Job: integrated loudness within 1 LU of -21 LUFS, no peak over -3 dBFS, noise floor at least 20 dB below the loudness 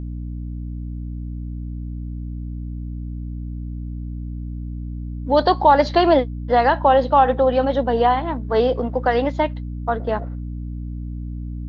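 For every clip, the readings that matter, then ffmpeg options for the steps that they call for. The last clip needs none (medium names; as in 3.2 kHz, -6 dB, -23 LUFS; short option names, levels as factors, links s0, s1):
hum 60 Hz; highest harmonic 300 Hz; hum level -26 dBFS; loudness -21.5 LUFS; peak level -2.5 dBFS; loudness target -21.0 LUFS
-> -af "bandreject=f=60:t=h:w=4,bandreject=f=120:t=h:w=4,bandreject=f=180:t=h:w=4,bandreject=f=240:t=h:w=4,bandreject=f=300:t=h:w=4"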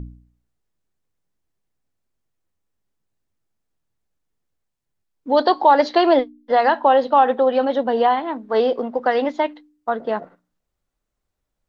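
hum not found; loudness -18.5 LUFS; peak level -2.5 dBFS; loudness target -21.0 LUFS
-> -af "volume=0.75"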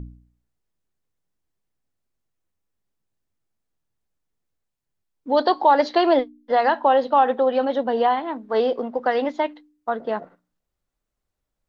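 loudness -21.0 LUFS; peak level -5.0 dBFS; noise floor -82 dBFS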